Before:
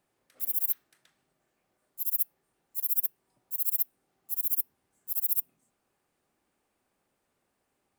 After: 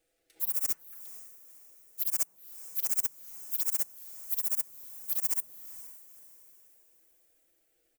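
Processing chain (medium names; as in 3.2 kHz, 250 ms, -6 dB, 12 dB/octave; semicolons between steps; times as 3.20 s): cycle switcher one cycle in 2, inverted; comb 6.1 ms, depth 87%; touch-sensitive phaser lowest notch 170 Hz, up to 3.7 kHz, full sweep at -24.5 dBFS; echo that smears into a reverb 492 ms, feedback 42%, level -15 dB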